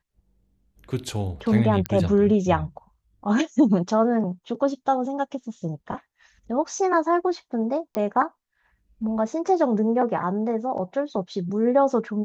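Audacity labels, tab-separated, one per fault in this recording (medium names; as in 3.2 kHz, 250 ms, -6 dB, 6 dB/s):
1.860000	1.860000	pop -11 dBFS
7.950000	7.950000	pop -13 dBFS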